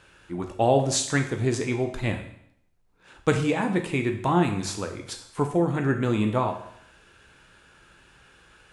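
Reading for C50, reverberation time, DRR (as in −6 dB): 9.0 dB, 0.70 s, 4.5 dB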